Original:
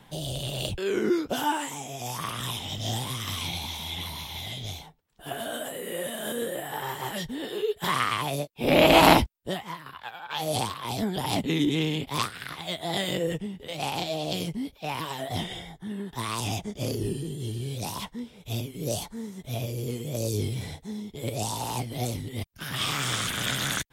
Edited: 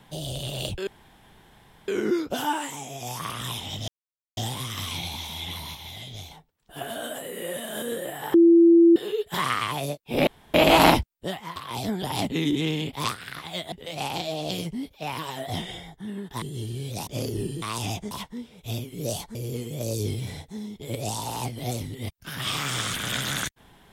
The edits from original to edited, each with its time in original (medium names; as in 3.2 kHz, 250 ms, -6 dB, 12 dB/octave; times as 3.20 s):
0.87 s: insert room tone 1.01 s
2.87 s: insert silence 0.49 s
4.25–4.81 s: gain -3.5 dB
6.84–7.46 s: bleep 337 Hz -11 dBFS
8.77 s: insert room tone 0.27 s
9.79–10.70 s: delete
12.86–13.54 s: delete
16.24–16.73 s: swap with 17.28–17.93 s
19.17–19.69 s: delete